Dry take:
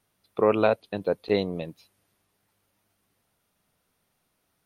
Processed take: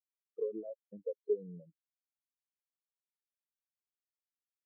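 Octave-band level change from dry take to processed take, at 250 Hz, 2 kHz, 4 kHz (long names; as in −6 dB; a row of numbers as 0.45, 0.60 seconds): −18.5 dB, below −40 dB, below −40 dB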